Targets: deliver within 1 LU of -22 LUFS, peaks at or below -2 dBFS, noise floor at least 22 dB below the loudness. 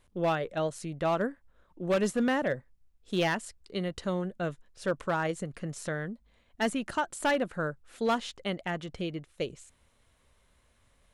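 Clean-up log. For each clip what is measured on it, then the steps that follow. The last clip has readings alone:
clipped 0.6%; flat tops at -21.0 dBFS; loudness -32.0 LUFS; peak -21.0 dBFS; loudness target -22.0 LUFS
-> clip repair -21 dBFS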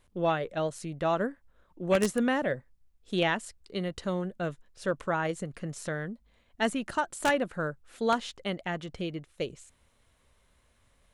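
clipped 0.0%; loudness -31.5 LUFS; peak -12.0 dBFS; loudness target -22.0 LUFS
-> gain +9.5 dB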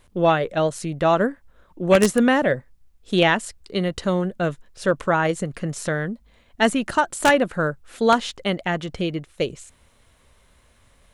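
loudness -22.0 LUFS; peak -2.5 dBFS; noise floor -58 dBFS

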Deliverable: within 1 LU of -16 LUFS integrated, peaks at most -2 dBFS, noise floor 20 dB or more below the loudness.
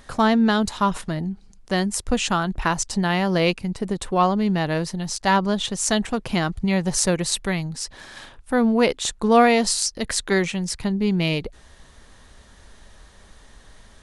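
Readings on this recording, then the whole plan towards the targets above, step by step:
loudness -22.0 LUFS; peak -3.0 dBFS; loudness target -16.0 LUFS
-> gain +6 dB; limiter -2 dBFS

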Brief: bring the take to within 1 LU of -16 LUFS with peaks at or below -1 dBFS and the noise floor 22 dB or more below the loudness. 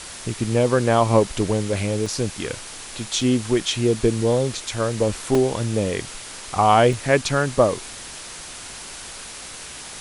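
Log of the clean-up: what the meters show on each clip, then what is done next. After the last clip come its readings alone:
dropouts 4; longest dropout 2.5 ms; noise floor -37 dBFS; noise floor target -43 dBFS; loudness -21.0 LUFS; peak -3.0 dBFS; loudness target -16.0 LUFS
-> interpolate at 2.06/3.21/5.35/6.93, 2.5 ms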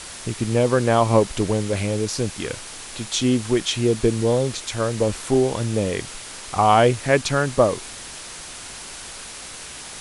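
dropouts 0; noise floor -37 dBFS; noise floor target -43 dBFS
-> denoiser 6 dB, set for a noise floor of -37 dBFS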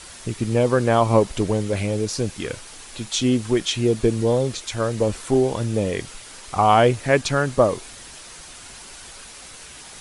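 noise floor -41 dBFS; noise floor target -43 dBFS
-> denoiser 6 dB, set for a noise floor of -41 dBFS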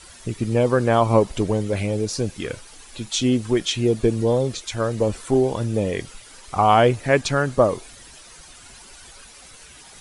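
noise floor -45 dBFS; loudness -21.0 LUFS; peak -3.5 dBFS; loudness target -16.0 LUFS
-> gain +5 dB; limiter -1 dBFS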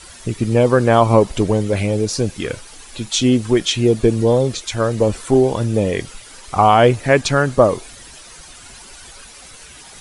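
loudness -16.5 LUFS; peak -1.0 dBFS; noise floor -40 dBFS

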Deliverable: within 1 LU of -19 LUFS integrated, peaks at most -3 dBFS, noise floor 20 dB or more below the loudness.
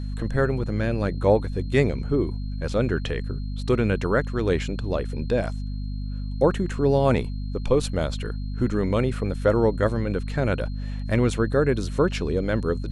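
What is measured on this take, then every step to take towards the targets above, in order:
hum 50 Hz; harmonics up to 250 Hz; hum level -27 dBFS; steady tone 4200 Hz; tone level -52 dBFS; loudness -24.5 LUFS; peak -5.5 dBFS; loudness target -19.0 LUFS
-> de-hum 50 Hz, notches 5; notch 4200 Hz, Q 30; gain +5.5 dB; limiter -3 dBFS

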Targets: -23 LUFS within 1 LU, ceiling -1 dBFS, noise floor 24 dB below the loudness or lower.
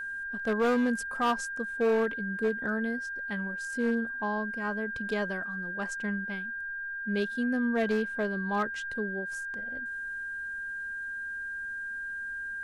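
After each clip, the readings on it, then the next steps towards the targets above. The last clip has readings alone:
clipped 1.1%; flat tops at -21.5 dBFS; steady tone 1600 Hz; tone level -34 dBFS; loudness -31.5 LUFS; peak -21.5 dBFS; loudness target -23.0 LUFS
-> clip repair -21.5 dBFS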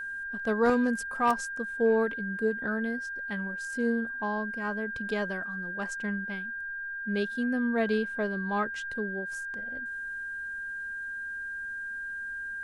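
clipped 0.0%; steady tone 1600 Hz; tone level -34 dBFS
-> notch 1600 Hz, Q 30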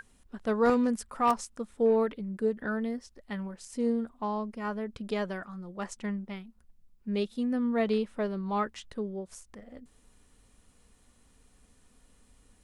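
steady tone none; loudness -31.5 LUFS; peak -13.0 dBFS; loudness target -23.0 LUFS
-> gain +8.5 dB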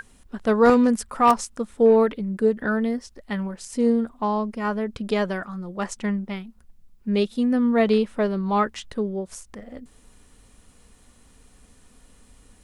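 loudness -23.0 LUFS; peak -4.5 dBFS; noise floor -55 dBFS

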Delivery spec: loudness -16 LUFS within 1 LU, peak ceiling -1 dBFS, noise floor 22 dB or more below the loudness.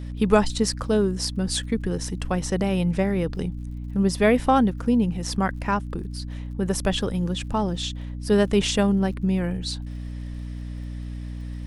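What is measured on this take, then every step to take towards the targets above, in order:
ticks 52/s; hum 60 Hz; harmonics up to 300 Hz; hum level -30 dBFS; loudness -24.0 LUFS; peak -4.5 dBFS; loudness target -16.0 LUFS
-> de-click; notches 60/120/180/240/300 Hz; gain +8 dB; limiter -1 dBFS

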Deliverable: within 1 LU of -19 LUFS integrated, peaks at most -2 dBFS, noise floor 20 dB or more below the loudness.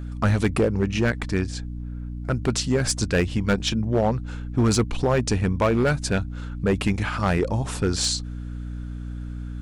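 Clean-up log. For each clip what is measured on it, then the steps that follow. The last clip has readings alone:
clipped 1.7%; flat tops at -14.0 dBFS; hum 60 Hz; harmonics up to 300 Hz; hum level -30 dBFS; loudness -23.5 LUFS; peak -14.0 dBFS; loudness target -19.0 LUFS
-> clip repair -14 dBFS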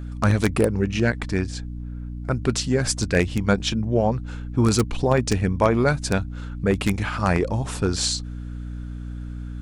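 clipped 0.0%; hum 60 Hz; harmonics up to 300 Hz; hum level -30 dBFS
-> notches 60/120/180/240/300 Hz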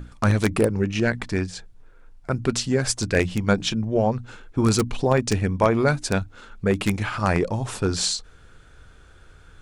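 hum none; loudness -23.5 LUFS; peak -4.5 dBFS; loudness target -19.0 LUFS
-> gain +4.5 dB; limiter -2 dBFS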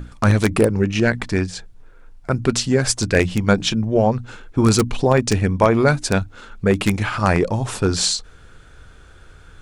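loudness -19.0 LUFS; peak -2.0 dBFS; noise floor -46 dBFS

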